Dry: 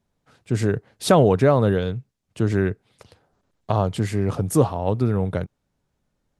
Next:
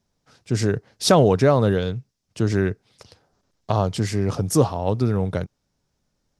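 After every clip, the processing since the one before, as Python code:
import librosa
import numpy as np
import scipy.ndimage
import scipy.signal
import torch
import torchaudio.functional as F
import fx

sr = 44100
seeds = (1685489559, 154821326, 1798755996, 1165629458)

y = fx.peak_eq(x, sr, hz=5400.0, db=10.5, octaves=0.71)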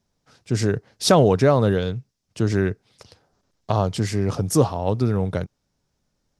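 y = x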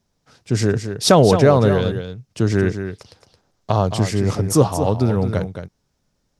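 y = x + 10.0 ** (-9.0 / 20.0) * np.pad(x, (int(220 * sr / 1000.0), 0))[:len(x)]
y = y * 10.0 ** (3.0 / 20.0)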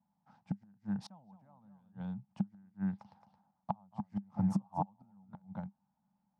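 y = fx.gate_flip(x, sr, shuts_db=-9.0, range_db=-37)
y = fx.double_bandpass(y, sr, hz=410.0, octaves=2.1)
y = y * 10.0 ** (1.5 / 20.0)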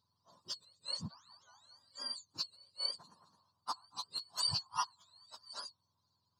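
y = fx.octave_mirror(x, sr, pivot_hz=930.0)
y = y * 10.0 ** (3.0 / 20.0)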